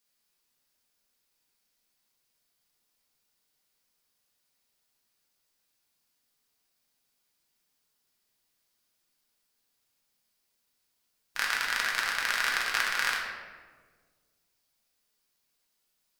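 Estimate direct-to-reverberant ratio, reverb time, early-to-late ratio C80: -3.5 dB, 1.5 s, 4.0 dB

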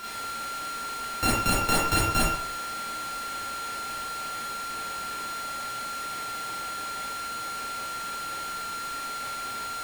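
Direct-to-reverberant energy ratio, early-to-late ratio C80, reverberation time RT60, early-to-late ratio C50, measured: -7.5 dB, 3.5 dB, 0.70 s, -1.5 dB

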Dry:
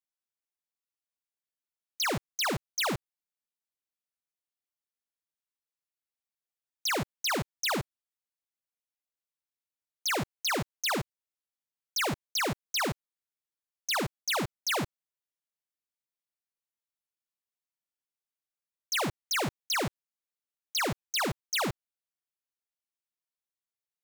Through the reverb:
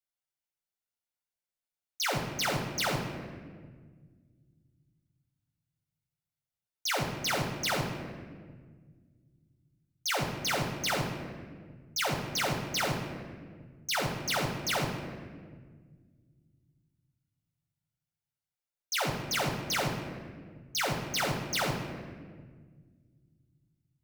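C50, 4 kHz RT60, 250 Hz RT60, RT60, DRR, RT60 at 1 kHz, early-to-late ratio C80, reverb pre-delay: 5.0 dB, 1.1 s, 2.6 s, 1.7 s, 0.5 dB, 1.5 s, 6.5 dB, 7 ms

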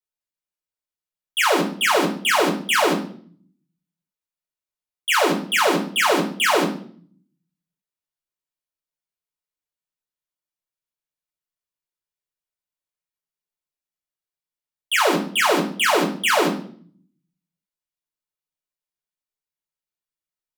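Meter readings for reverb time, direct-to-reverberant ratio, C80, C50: 0.55 s, -1.5 dB, 13.0 dB, 9.0 dB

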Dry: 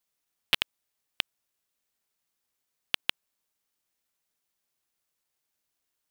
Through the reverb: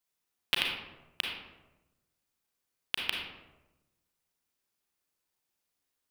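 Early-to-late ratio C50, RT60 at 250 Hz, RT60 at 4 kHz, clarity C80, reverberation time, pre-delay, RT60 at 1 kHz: 1.5 dB, 1.2 s, 0.55 s, 4.5 dB, 1.0 s, 32 ms, 0.95 s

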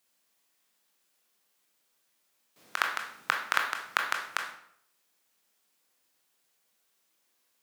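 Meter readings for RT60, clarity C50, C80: 0.65 s, 6.0 dB, 10.0 dB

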